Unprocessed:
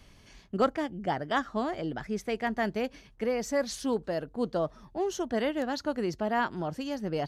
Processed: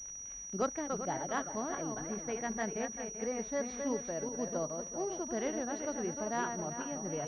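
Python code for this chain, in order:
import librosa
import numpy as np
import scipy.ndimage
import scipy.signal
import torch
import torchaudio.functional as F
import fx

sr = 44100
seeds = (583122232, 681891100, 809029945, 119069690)

y = fx.reverse_delay_fb(x, sr, ms=195, feedback_pct=56, wet_db=-5.5)
y = fx.dmg_crackle(y, sr, seeds[0], per_s=130.0, level_db=-37.0)
y = fx.pwm(y, sr, carrier_hz=5800.0)
y = y * 10.0 ** (-7.5 / 20.0)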